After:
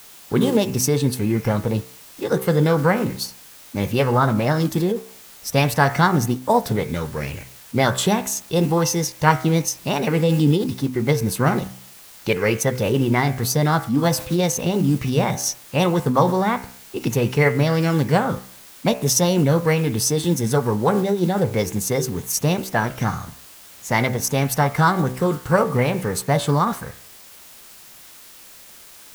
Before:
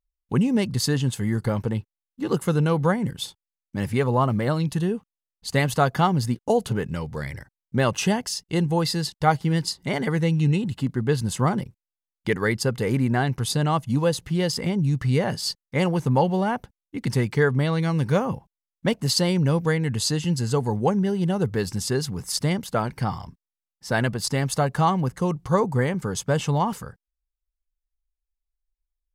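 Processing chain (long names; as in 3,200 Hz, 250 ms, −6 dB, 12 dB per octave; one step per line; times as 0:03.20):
bit-depth reduction 8 bits, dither triangular
hum removal 63.8 Hz, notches 36
formants moved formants +4 semitones
level +4 dB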